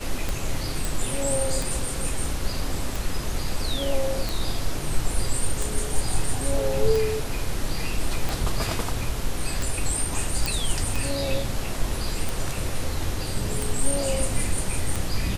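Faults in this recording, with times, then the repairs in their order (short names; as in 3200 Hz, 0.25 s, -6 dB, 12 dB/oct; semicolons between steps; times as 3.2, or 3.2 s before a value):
tick 45 rpm
0.85 pop
10.46 pop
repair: de-click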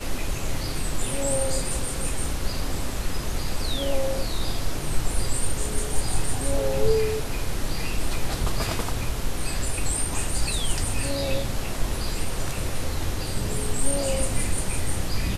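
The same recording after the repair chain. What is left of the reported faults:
0.85 pop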